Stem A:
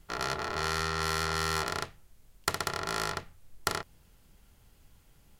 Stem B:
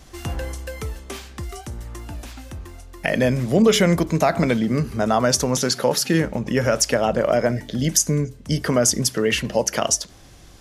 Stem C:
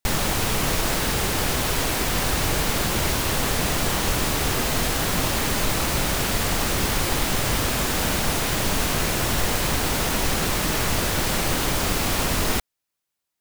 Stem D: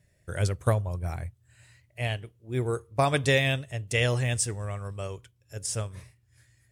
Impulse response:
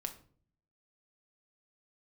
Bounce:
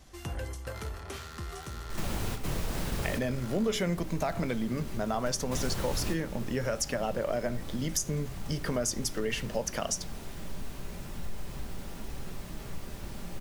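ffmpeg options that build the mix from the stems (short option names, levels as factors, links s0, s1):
-filter_complex "[0:a]aeval=exprs='0.0631*(abs(mod(val(0)/0.0631+3,4)-2)-1)':c=same,adelay=550,volume=0.224,asplit=2[s0][s1];[s1]volume=0.668[s2];[1:a]volume=0.473,asplit=2[s3][s4];[s4]volume=0.316[s5];[2:a]lowshelf=f=420:g=10,adelay=1850,volume=0.282,asplit=2[s6][s7];[s7]volume=0.376[s8];[3:a]acompressor=threshold=0.01:ratio=2.5,volume=0.668,asplit=3[s9][s10][s11];[s9]atrim=end=3.03,asetpts=PTS-STARTPTS,afade=t=out:st=3.026:d=0.004:c=hsin[s12];[s10]atrim=start=3.03:end=5.25,asetpts=PTS-STARTPTS,volume=0[s13];[s11]atrim=start=5.25,asetpts=PTS-STARTPTS,afade=t=in:d=0.004:c=hsin[s14];[s12][s13][s14]concat=n=3:v=0:a=1,asplit=2[s15][s16];[s16]apad=whole_len=672849[s17];[s6][s17]sidechaingate=range=0.0224:threshold=0.00126:ratio=16:detection=peak[s18];[4:a]atrim=start_sample=2205[s19];[s2][s5][s8]amix=inputs=3:normalize=0[s20];[s20][s19]afir=irnorm=-1:irlink=0[s21];[s0][s3][s18][s15][s21]amix=inputs=5:normalize=0,flanger=delay=1:depth=2.8:regen=-83:speed=0.72:shape=triangular,acompressor=threshold=0.0355:ratio=2"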